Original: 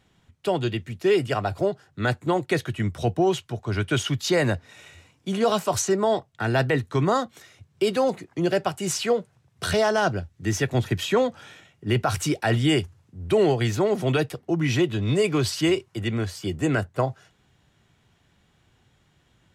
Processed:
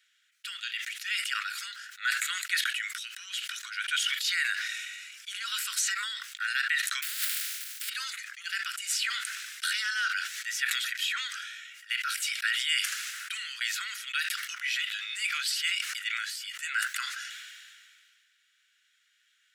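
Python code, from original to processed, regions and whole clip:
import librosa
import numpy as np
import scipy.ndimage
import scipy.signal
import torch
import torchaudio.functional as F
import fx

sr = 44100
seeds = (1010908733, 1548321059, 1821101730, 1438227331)

y = fx.spec_flatten(x, sr, power=0.11, at=(7.02, 7.88), fade=0.02)
y = fx.over_compress(y, sr, threshold_db=-32.0, ratio=-1.0, at=(7.02, 7.88), fade=0.02)
y = scipy.signal.sosfilt(scipy.signal.butter(12, 1400.0, 'highpass', fs=sr, output='sos'), y)
y = fx.dynamic_eq(y, sr, hz=6200.0, q=3.9, threshold_db=-50.0, ratio=4.0, max_db=-6)
y = fx.sustainer(y, sr, db_per_s=28.0)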